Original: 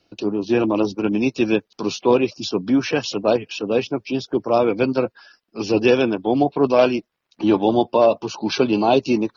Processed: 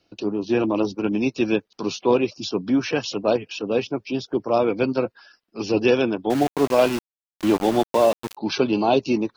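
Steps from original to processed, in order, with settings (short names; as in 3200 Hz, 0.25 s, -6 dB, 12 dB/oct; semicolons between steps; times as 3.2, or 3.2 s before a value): 6.3–8.37 sample gate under -23 dBFS; gain -2.5 dB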